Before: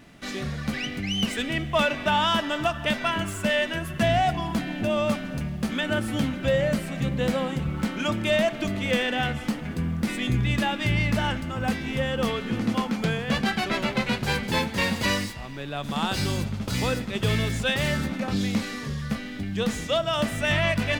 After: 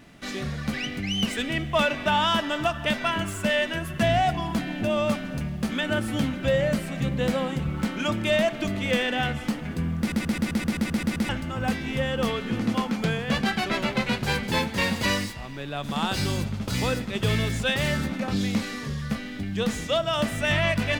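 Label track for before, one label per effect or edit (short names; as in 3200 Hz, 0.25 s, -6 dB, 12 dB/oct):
9.990000	9.990000	stutter in place 0.13 s, 10 plays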